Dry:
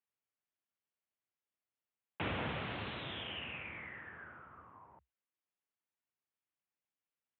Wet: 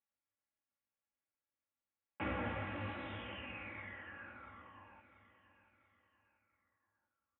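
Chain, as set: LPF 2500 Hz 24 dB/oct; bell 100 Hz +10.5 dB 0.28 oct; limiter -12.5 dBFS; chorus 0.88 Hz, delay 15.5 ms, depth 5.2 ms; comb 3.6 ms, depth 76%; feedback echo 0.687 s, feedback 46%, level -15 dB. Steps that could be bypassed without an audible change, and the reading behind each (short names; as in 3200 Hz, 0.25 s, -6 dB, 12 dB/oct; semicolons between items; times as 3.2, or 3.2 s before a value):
limiter -12.5 dBFS: input peak -24.0 dBFS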